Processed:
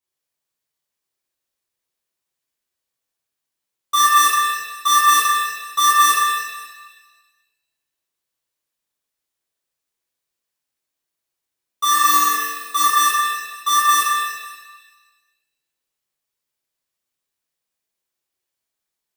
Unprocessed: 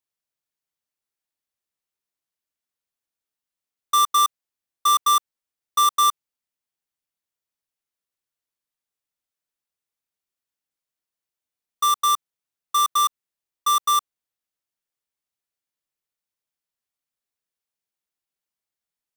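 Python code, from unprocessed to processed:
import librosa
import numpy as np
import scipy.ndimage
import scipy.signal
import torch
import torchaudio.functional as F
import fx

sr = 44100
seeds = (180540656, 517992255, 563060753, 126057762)

y = fx.room_flutter(x, sr, wall_m=4.0, rt60_s=0.8, at=(11.9, 12.83))
y = fx.rev_shimmer(y, sr, seeds[0], rt60_s=1.2, semitones=7, shimmer_db=-8, drr_db=-8.5)
y = y * 10.0 ** (-3.0 / 20.0)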